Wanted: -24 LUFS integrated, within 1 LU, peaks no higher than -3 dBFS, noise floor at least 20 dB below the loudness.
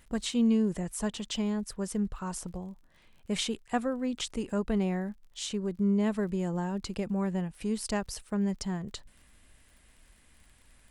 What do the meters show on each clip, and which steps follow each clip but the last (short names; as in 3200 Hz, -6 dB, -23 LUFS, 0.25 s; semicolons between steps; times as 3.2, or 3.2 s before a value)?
ticks 44/s; loudness -31.5 LUFS; peak -15.5 dBFS; loudness target -24.0 LUFS
-> de-click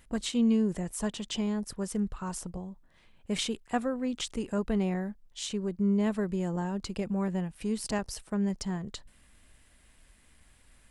ticks 0.092/s; loudness -31.5 LUFS; peak -15.5 dBFS; loudness target -24.0 LUFS
-> gain +7.5 dB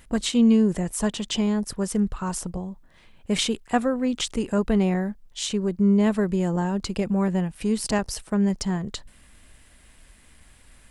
loudness -24.0 LUFS; peak -8.0 dBFS; noise floor -54 dBFS